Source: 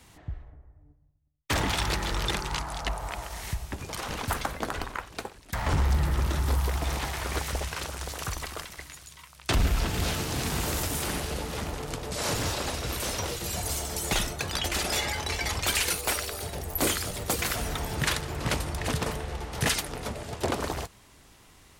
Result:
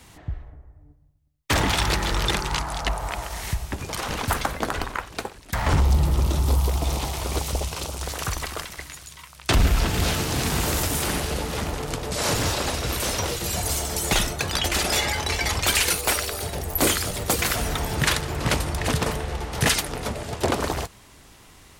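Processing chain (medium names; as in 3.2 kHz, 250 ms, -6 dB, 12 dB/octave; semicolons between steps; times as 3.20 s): 5.80–8.03 s: peaking EQ 1.7 kHz -12 dB 0.87 oct; trim +5.5 dB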